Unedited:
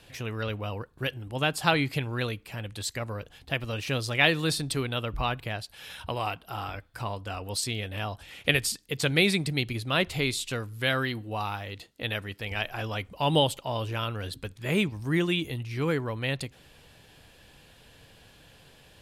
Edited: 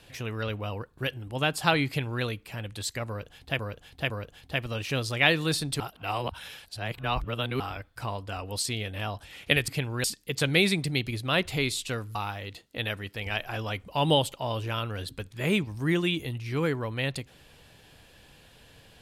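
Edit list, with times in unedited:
0:01.87–0:02.23: duplicate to 0:08.66
0:03.08–0:03.59: repeat, 3 plays
0:04.78–0:06.58: reverse
0:10.77–0:11.40: remove

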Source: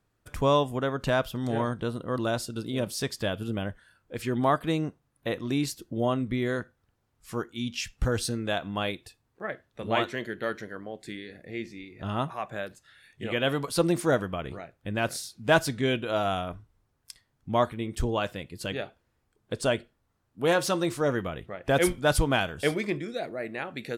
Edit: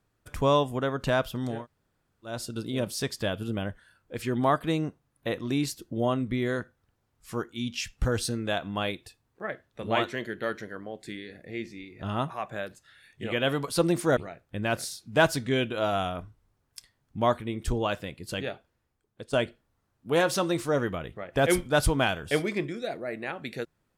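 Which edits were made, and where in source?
0:01.55–0:02.34: fill with room tone, crossfade 0.24 s
0:14.17–0:14.49: remove
0:18.77–0:19.65: fade out, to −12.5 dB

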